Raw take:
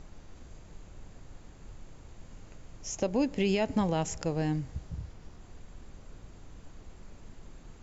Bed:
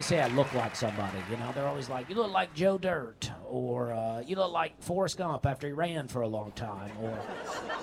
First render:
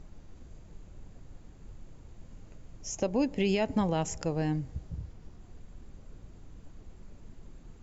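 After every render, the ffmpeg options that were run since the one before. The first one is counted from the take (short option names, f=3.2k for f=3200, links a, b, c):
-af "afftdn=nr=6:nf=-52"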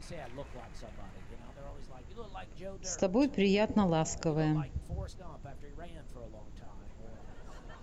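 -filter_complex "[1:a]volume=-18.5dB[a];[0:a][a]amix=inputs=2:normalize=0"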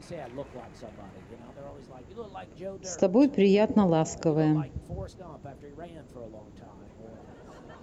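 -af "highpass=65,equalizer=f=360:w=0.51:g=8"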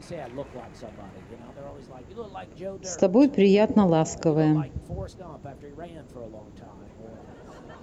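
-af "volume=3dB"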